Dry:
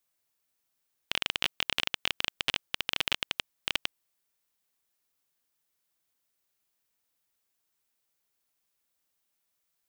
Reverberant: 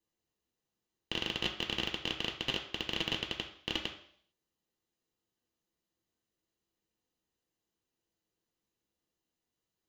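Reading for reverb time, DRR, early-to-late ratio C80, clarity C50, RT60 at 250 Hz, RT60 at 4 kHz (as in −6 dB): 0.60 s, 1.5 dB, 12.5 dB, 9.0 dB, 0.60 s, 0.65 s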